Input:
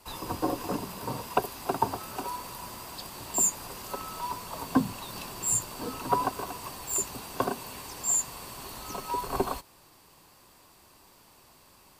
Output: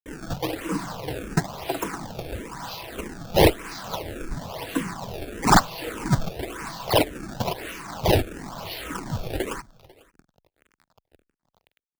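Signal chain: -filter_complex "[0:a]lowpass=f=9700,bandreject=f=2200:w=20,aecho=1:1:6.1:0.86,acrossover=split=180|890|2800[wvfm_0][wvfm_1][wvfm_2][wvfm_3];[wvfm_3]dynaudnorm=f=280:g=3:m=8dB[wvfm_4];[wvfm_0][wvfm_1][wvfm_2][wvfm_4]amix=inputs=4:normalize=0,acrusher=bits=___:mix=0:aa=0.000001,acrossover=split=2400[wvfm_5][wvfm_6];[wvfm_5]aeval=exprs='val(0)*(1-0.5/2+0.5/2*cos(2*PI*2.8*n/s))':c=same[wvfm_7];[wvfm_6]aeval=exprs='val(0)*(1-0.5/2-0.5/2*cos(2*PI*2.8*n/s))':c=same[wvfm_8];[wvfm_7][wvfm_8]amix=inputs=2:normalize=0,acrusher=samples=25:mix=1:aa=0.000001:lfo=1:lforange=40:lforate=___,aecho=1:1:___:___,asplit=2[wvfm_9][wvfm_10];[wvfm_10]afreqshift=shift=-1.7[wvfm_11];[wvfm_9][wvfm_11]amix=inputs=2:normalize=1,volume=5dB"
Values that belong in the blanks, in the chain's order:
6, 1, 495, 0.0668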